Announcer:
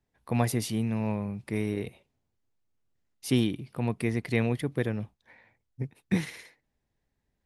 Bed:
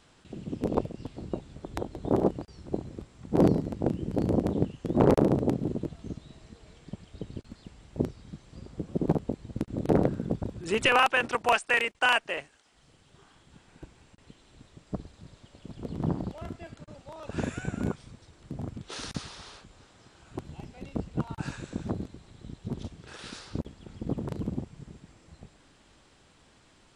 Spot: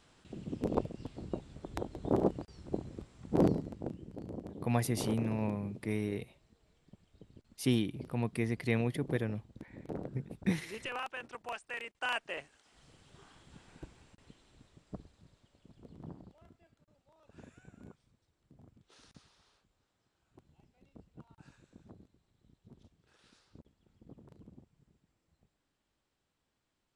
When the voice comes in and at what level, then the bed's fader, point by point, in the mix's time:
4.35 s, -4.5 dB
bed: 3.37 s -4.5 dB
4.19 s -17.5 dB
11.68 s -17.5 dB
12.75 s -1 dB
13.68 s -1 dB
16.68 s -23 dB

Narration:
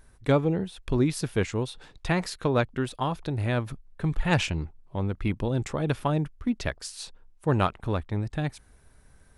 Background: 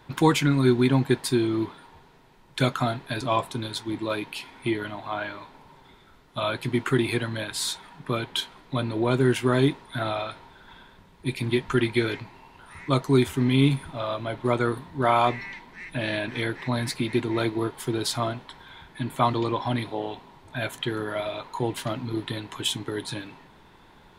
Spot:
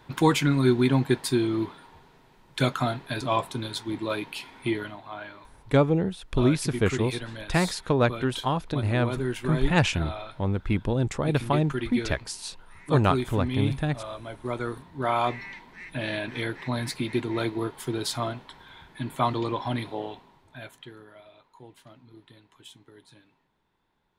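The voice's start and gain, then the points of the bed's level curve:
5.45 s, +2.0 dB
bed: 4.78 s -1 dB
5.04 s -8 dB
14.42 s -8 dB
15.51 s -2.5 dB
20.01 s -2.5 dB
21.21 s -21.5 dB

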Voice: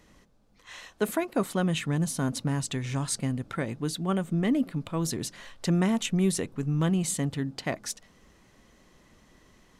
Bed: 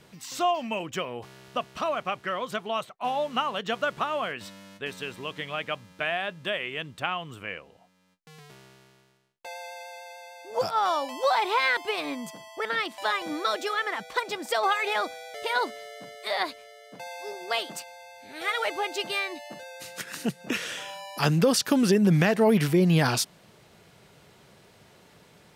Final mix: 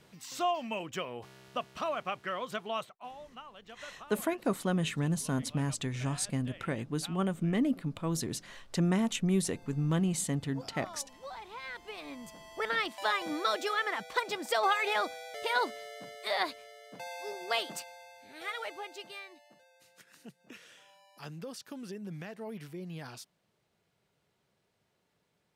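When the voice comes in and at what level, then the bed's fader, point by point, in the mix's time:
3.10 s, -3.5 dB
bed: 2.85 s -5.5 dB
3.17 s -21 dB
11.53 s -21 dB
12.62 s -3 dB
17.79 s -3 dB
19.72 s -21.5 dB

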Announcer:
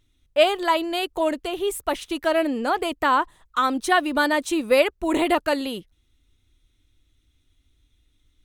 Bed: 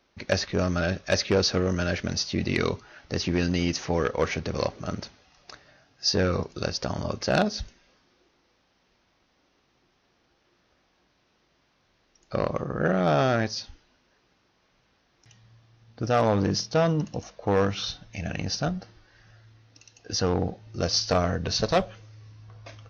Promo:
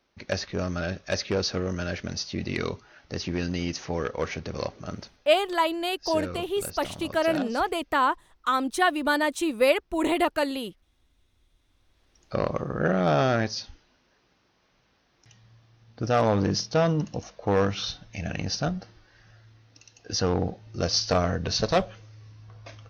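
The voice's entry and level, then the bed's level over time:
4.90 s, -3.0 dB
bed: 5 s -4 dB
5.5 s -10.5 dB
11.58 s -10.5 dB
12.22 s 0 dB

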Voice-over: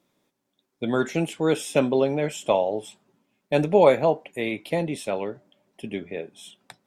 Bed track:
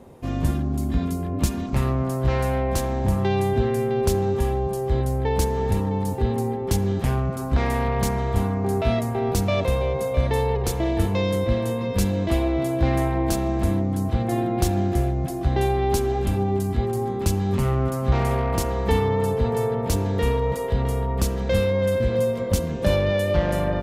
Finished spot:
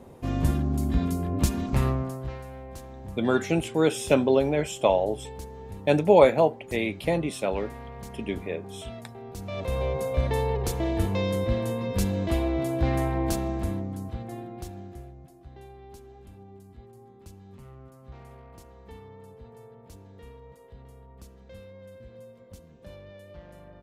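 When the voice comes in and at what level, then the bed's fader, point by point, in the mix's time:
2.35 s, 0.0 dB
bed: 1.87 s -1.5 dB
2.44 s -18 dB
9.32 s -18 dB
9.82 s -4 dB
13.32 s -4 dB
15.45 s -25.5 dB

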